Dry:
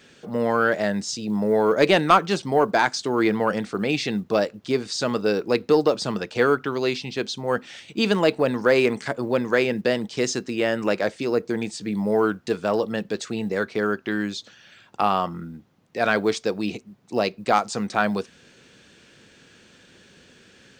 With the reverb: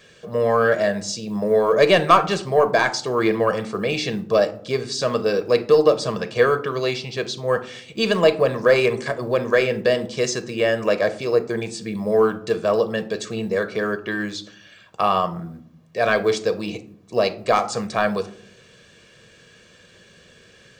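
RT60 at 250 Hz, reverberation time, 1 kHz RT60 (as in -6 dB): 0.90 s, 0.65 s, 0.55 s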